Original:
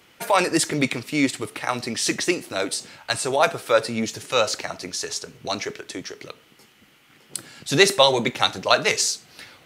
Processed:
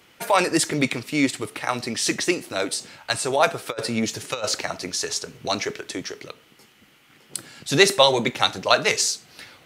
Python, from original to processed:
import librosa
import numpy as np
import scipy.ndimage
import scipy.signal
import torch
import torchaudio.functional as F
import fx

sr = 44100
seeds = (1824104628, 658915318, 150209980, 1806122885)

y = fx.over_compress(x, sr, threshold_db=-23.0, ratio=-0.5, at=(3.67, 6.2))